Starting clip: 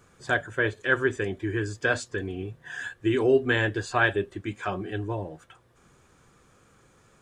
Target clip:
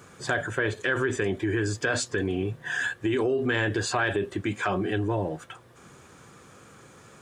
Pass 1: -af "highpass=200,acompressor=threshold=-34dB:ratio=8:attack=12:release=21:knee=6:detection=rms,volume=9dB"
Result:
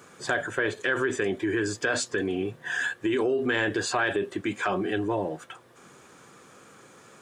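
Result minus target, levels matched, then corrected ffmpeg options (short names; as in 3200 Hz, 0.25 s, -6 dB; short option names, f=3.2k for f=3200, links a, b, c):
125 Hz band -7.5 dB
-af "highpass=94,acompressor=threshold=-34dB:ratio=8:attack=12:release=21:knee=6:detection=rms,volume=9dB"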